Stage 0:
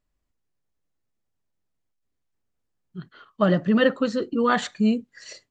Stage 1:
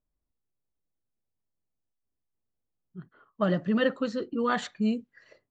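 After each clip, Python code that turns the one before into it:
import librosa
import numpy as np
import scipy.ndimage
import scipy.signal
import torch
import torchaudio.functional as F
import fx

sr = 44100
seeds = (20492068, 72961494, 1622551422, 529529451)

y = fx.env_lowpass(x, sr, base_hz=1000.0, full_db=-17.0)
y = F.gain(torch.from_numpy(y), -6.0).numpy()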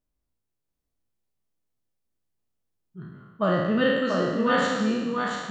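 y = fx.spec_trails(x, sr, decay_s=1.31)
y = y + 10.0 ** (-4.0 / 20.0) * np.pad(y, (int(686 * sr / 1000.0), 0))[:len(y)]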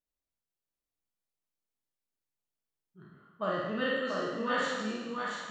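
y = fx.low_shelf(x, sr, hz=290.0, db=-10.5)
y = fx.doubler(y, sr, ms=47.0, db=-4)
y = F.gain(torch.from_numpy(y), -7.5).numpy()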